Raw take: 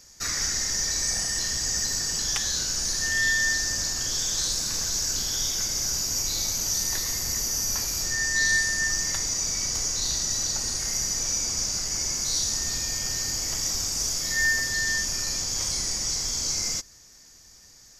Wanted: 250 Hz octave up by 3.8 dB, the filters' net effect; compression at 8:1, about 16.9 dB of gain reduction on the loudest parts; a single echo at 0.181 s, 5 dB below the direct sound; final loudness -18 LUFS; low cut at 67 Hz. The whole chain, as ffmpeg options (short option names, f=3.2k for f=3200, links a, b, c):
-af "highpass=67,equalizer=f=250:t=o:g=5,acompressor=threshold=-38dB:ratio=8,aecho=1:1:181:0.562,volume=18.5dB"